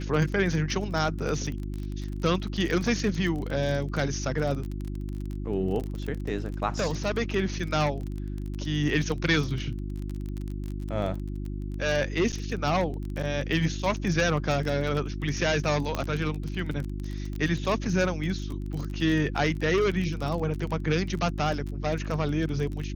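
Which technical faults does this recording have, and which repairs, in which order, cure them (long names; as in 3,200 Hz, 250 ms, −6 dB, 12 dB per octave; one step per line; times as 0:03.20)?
surface crackle 26 per second −31 dBFS
mains hum 50 Hz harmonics 7 −33 dBFS
0:12.32–0:12.33: drop-out 8.2 ms
0:15.95: click −14 dBFS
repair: click removal
hum removal 50 Hz, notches 7
repair the gap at 0:12.32, 8.2 ms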